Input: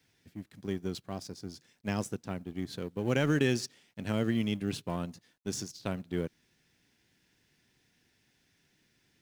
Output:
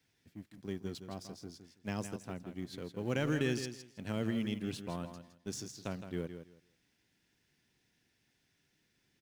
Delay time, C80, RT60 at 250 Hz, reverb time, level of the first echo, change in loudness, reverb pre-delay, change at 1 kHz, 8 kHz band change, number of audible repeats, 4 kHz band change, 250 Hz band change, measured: 163 ms, no reverb, no reverb, no reverb, -9.5 dB, -5.0 dB, no reverb, -5.0 dB, -5.0 dB, 2, -5.0 dB, -5.0 dB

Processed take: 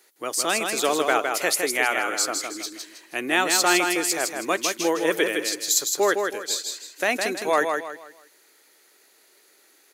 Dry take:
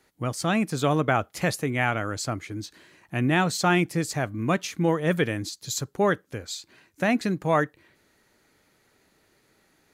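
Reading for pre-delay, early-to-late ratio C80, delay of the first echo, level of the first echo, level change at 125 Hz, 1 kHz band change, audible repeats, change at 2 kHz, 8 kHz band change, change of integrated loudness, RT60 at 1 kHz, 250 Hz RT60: no reverb, no reverb, 160 ms, -5.0 dB, -21.0 dB, +2.5 dB, 4, +5.0 dB, +11.5 dB, +3.0 dB, no reverb, no reverb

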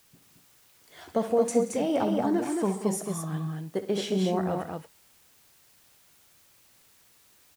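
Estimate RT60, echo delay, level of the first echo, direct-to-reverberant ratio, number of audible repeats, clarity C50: no reverb, 64 ms, -12.5 dB, no reverb, 4, no reverb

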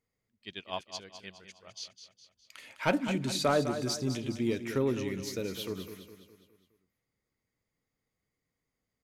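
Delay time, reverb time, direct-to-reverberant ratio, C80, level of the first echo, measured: 206 ms, no reverb, no reverb, no reverb, -10.0 dB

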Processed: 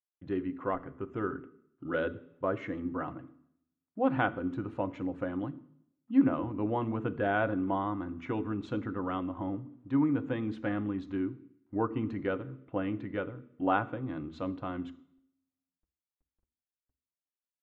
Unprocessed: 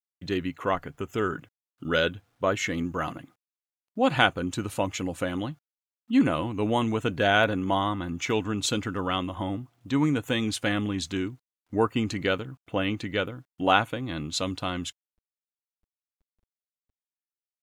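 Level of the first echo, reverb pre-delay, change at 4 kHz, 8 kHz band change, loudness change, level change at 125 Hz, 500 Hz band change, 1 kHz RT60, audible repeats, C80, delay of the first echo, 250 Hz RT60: no echo, 3 ms, -22.0 dB, under -35 dB, -6.0 dB, -6.5 dB, -6.0 dB, 0.70 s, no echo, 21.0 dB, no echo, 0.70 s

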